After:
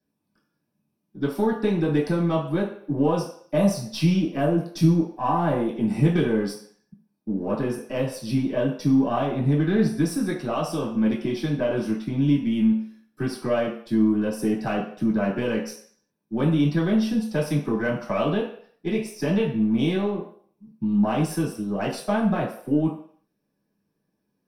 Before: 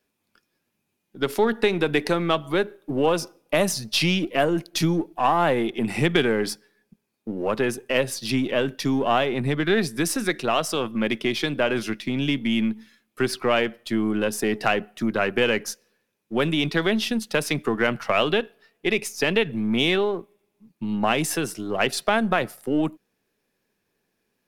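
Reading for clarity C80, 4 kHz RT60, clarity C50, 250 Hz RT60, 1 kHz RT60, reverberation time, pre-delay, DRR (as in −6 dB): 9.5 dB, 0.55 s, 6.0 dB, 0.45 s, 0.55 s, 0.55 s, 3 ms, −8.0 dB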